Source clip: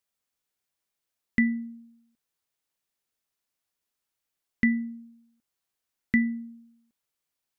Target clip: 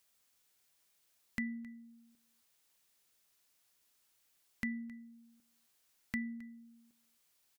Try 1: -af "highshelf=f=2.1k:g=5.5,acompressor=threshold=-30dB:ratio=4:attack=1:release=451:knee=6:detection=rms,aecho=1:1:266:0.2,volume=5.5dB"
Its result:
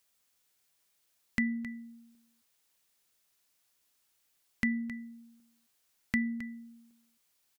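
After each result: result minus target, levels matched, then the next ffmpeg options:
compressor: peak gain reduction -8 dB; echo-to-direct +6.5 dB
-af "highshelf=f=2.1k:g=5.5,acompressor=threshold=-40.5dB:ratio=4:attack=1:release=451:knee=6:detection=rms,aecho=1:1:266:0.2,volume=5.5dB"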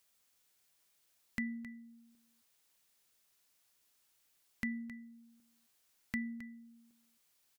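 echo-to-direct +6.5 dB
-af "highshelf=f=2.1k:g=5.5,acompressor=threshold=-40.5dB:ratio=4:attack=1:release=451:knee=6:detection=rms,aecho=1:1:266:0.0944,volume=5.5dB"

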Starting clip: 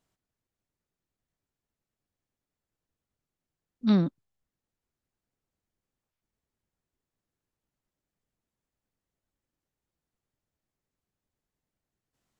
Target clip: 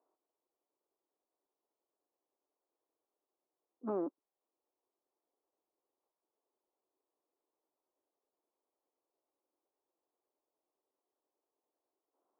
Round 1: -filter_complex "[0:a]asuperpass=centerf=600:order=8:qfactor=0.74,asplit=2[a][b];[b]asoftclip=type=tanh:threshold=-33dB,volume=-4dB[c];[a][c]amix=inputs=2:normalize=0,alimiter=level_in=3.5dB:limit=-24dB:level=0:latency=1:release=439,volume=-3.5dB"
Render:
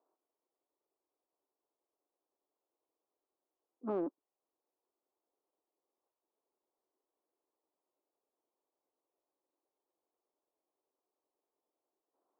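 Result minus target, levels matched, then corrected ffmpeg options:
soft clip: distortion +14 dB
-filter_complex "[0:a]asuperpass=centerf=600:order=8:qfactor=0.74,asplit=2[a][b];[b]asoftclip=type=tanh:threshold=-22.5dB,volume=-4dB[c];[a][c]amix=inputs=2:normalize=0,alimiter=level_in=3.5dB:limit=-24dB:level=0:latency=1:release=439,volume=-3.5dB"

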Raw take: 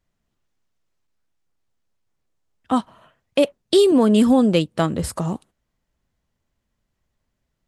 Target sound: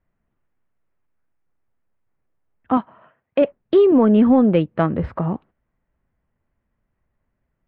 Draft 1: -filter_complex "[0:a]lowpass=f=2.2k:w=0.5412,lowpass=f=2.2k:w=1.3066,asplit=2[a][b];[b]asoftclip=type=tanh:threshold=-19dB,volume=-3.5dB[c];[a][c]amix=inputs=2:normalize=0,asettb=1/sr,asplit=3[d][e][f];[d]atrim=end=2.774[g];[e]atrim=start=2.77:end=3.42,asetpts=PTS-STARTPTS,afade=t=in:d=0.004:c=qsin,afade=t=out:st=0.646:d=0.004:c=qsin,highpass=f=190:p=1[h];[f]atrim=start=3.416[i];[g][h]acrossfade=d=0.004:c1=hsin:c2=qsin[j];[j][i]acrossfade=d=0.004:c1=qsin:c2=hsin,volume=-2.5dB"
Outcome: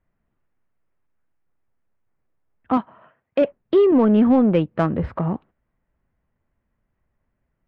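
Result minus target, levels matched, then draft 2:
soft clip: distortion +11 dB
-filter_complex "[0:a]lowpass=f=2.2k:w=0.5412,lowpass=f=2.2k:w=1.3066,asplit=2[a][b];[b]asoftclip=type=tanh:threshold=-9dB,volume=-3.5dB[c];[a][c]amix=inputs=2:normalize=0,asettb=1/sr,asplit=3[d][e][f];[d]atrim=end=2.774[g];[e]atrim=start=2.77:end=3.42,asetpts=PTS-STARTPTS,afade=t=in:d=0.004:c=qsin,afade=t=out:st=0.646:d=0.004:c=qsin,highpass=f=190:p=1[h];[f]atrim=start=3.416[i];[g][h]acrossfade=d=0.004:c1=hsin:c2=qsin[j];[j][i]acrossfade=d=0.004:c1=qsin:c2=hsin,volume=-2.5dB"

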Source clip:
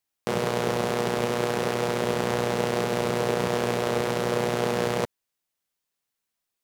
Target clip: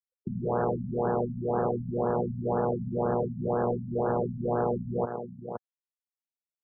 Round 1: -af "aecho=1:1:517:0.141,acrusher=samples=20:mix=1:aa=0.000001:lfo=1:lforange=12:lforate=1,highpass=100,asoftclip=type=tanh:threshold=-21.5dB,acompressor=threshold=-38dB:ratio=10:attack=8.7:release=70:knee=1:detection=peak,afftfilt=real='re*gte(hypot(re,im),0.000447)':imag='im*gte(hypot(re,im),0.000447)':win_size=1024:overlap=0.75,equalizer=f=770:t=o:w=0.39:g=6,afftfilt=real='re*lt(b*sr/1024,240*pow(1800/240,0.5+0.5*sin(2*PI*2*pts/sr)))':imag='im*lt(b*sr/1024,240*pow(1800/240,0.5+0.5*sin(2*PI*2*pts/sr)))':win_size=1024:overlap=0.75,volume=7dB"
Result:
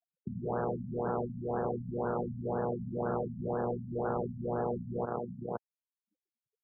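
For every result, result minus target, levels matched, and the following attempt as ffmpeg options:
compressor: peak gain reduction +5.5 dB; decimation with a swept rate: distortion +8 dB
-af "aecho=1:1:517:0.141,acrusher=samples=20:mix=1:aa=0.000001:lfo=1:lforange=12:lforate=1,highpass=100,asoftclip=type=tanh:threshold=-21.5dB,acompressor=threshold=-32dB:ratio=10:attack=8.7:release=70:knee=1:detection=peak,afftfilt=real='re*gte(hypot(re,im),0.000447)':imag='im*gte(hypot(re,im),0.000447)':win_size=1024:overlap=0.75,equalizer=f=770:t=o:w=0.39:g=6,afftfilt=real='re*lt(b*sr/1024,240*pow(1800/240,0.5+0.5*sin(2*PI*2*pts/sr)))':imag='im*lt(b*sr/1024,240*pow(1800/240,0.5+0.5*sin(2*PI*2*pts/sr)))':win_size=1024:overlap=0.75,volume=7dB"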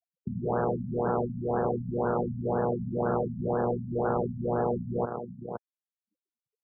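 decimation with a swept rate: distortion +8 dB
-af "aecho=1:1:517:0.141,acrusher=samples=7:mix=1:aa=0.000001:lfo=1:lforange=4.2:lforate=1,highpass=100,asoftclip=type=tanh:threshold=-21.5dB,acompressor=threshold=-32dB:ratio=10:attack=8.7:release=70:knee=1:detection=peak,afftfilt=real='re*gte(hypot(re,im),0.000447)':imag='im*gte(hypot(re,im),0.000447)':win_size=1024:overlap=0.75,equalizer=f=770:t=o:w=0.39:g=6,afftfilt=real='re*lt(b*sr/1024,240*pow(1800/240,0.5+0.5*sin(2*PI*2*pts/sr)))':imag='im*lt(b*sr/1024,240*pow(1800/240,0.5+0.5*sin(2*PI*2*pts/sr)))':win_size=1024:overlap=0.75,volume=7dB"

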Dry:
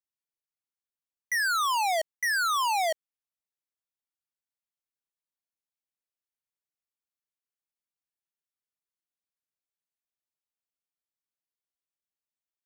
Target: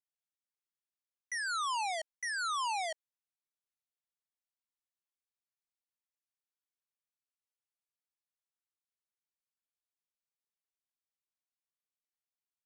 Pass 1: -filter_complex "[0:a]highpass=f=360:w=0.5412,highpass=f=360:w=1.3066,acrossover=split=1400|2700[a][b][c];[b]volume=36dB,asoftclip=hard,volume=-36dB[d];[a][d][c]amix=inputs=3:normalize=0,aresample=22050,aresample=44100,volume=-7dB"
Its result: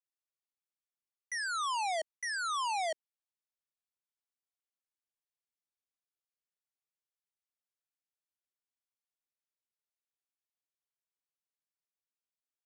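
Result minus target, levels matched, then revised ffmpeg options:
500 Hz band +4.5 dB
-filter_complex "[0:a]highpass=f=730:w=0.5412,highpass=f=730:w=1.3066,acrossover=split=1400|2700[a][b][c];[b]volume=36dB,asoftclip=hard,volume=-36dB[d];[a][d][c]amix=inputs=3:normalize=0,aresample=22050,aresample=44100,volume=-7dB"

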